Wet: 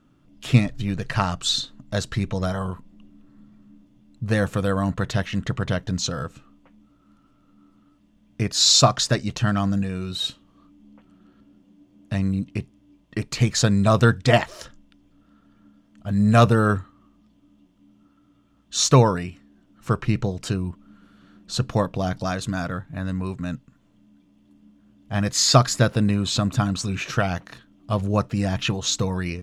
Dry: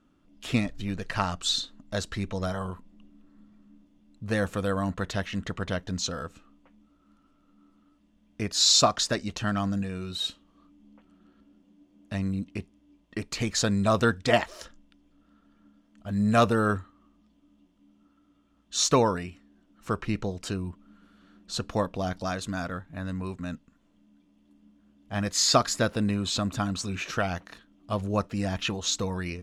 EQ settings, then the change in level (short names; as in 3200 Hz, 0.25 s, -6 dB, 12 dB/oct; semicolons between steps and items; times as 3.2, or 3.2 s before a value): bell 130 Hz +13.5 dB 0.41 oct; +4.0 dB